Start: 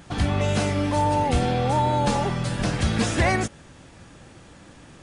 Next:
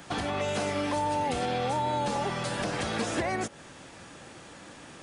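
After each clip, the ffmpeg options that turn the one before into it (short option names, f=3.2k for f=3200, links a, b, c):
-filter_complex "[0:a]acrossover=split=350|1200[a][b][c];[a]acompressor=threshold=-31dB:ratio=4[d];[b]acompressor=threshold=-32dB:ratio=4[e];[c]acompressor=threshold=-38dB:ratio=4[f];[d][e][f]amix=inputs=3:normalize=0,acrossover=split=620[g][h];[g]aemphasis=mode=production:type=bsi[i];[h]alimiter=level_in=3.5dB:limit=-24dB:level=0:latency=1:release=99,volume=-3.5dB[j];[i][j]amix=inputs=2:normalize=0,volume=3dB"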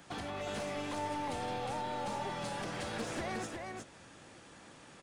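-filter_complex "[0:a]aeval=exprs='clip(val(0),-1,0.0398)':c=same,asplit=2[a][b];[b]aecho=0:1:359:0.631[c];[a][c]amix=inputs=2:normalize=0,volume=-9dB"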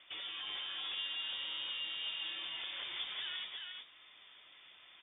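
-af "flanger=delay=5.6:depth=4.9:regen=79:speed=0.55:shape=triangular,lowpass=f=3.1k:t=q:w=0.5098,lowpass=f=3.1k:t=q:w=0.6013,lowpass=f=3.1k:t=q:w=0.9,lowpass=f=3.1k:t=q:w=2.563,afreqshift=-3700,volume=1dB"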